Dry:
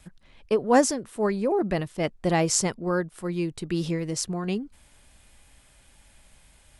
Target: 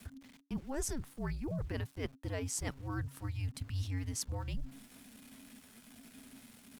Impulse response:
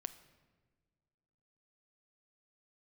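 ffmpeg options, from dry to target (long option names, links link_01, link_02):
-af "bandreject=frequency=123.9:width_type=h:width=4,bandreject=frequency=247.8:width_type=h:width=4,bandreject=frequency=371.7:width_type=h:width=4,areverse,acompressor=threshold=-34dB:ratio=16,areverse,aeval=exprs='val(0)*gte(abs(val(0)),0.00178)':channel_layout=same,afreqshift=-250,asetrate=49501,aresample=44100,atempo=0.890899"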